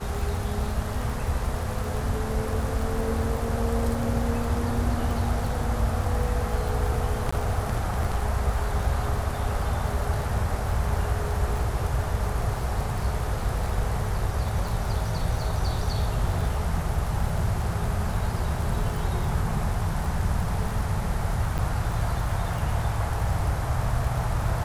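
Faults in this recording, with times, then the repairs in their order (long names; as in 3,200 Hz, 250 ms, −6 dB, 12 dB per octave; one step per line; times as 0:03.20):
surface crackle 33 per second −30 dBFS
0:07.31–0:07.33: drop-out 15 ms
0:21.58–0:21.59: drop-out 6.3 ms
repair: click removal
repair the gap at 0:07.31, 15 ms
repair the gap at 0:21.58, 6.3 ms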